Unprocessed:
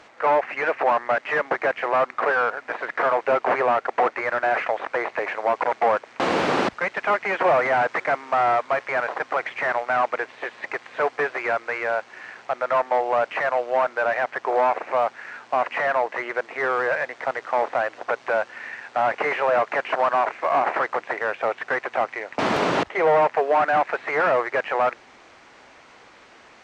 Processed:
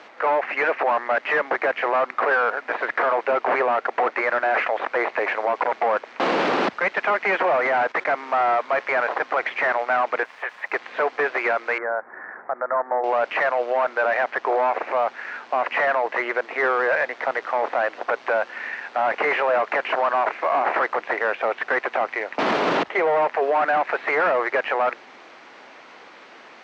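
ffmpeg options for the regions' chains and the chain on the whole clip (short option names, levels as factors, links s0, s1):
-filter_complex "[0:a]asettb=1/sr,asplit=3[s0][s1][s2];[s0]atrim=end=7.564[s3];[s1]atrim=start=7.56:end=8.18,asetpts=PTS-STARTPTS,afade=t=in:d=0.004:c=qsin,afade=t=out:st=0.616:d=0.004:c=qsin,agate=range=0.251:threshold=0.0141:ratio=16:release=100:detection=peak,acompressor=threshold=0.0631:ratio=2:attack=3.2:release=140:knee=1:detection=peak[s4];[s2]atrim=start=8.176[s5];[s3][s4]acrossfade=d=0.004:c1=hsin:c2=qsin[s6];[s6][s5]acrossfade=d=0.004:c1=qsin:c2=hsin,asettb=1/sr,asplit=3[s7][s8][s9];[s7]atrim=end=10.234[s10];[s8]atrim=start=10.23:end=10.72,asetpts=PTS-STARTPTS,afade=t=in:d=0.004:c=qsin,afade=t=out:st=0.486:d=0.004:c=qsin,highpass=800,lowpass=2300,aeval=exprs='val(0)*gte(abs(val(0)),0.00316)':c=same[s11];[s9]atrim=start=10.716[s12];[s10][s11]acrossfade=d=0.004:c1=hsin:c2=qsin[s13];[s13][s12]acrossfade=d=0.004:c1=qsin:c2=hsin,asettb=1/sr,asplit=3[s14][s15][s16];[s14]atrim=end=11.784[s17];[s15]atrim=start=11.78:end=13.04,asetpts=PTS-STARTPTS,afade=t=in:d=0.004:c=qsin,afade=t=out:st=1.256:d=0.004:c=qsin,acompressor=threshold=0.02:ratio=1.5:attack=3.2:release=140:knee=1:detection=peak,asuperstop=centerf=4500:order=12:qfactor=0.56[s18];[s16]atrim=start=13.036[s19];[s17][s18]acrossfade=d=0.004:c1=hsin:c2=qsin[s20];[s20][s19]acrossfade=d=0.004:c1=qsin:c2=hsin,acrossover=split=170 5900:gain=0.0794 1 0.112[s21][s22][s23];[s21][s22][s23]amix=inputs=3:normalize=0,alimiter=limit=0.141:level=0:latency=1:release=20,volume=1.68"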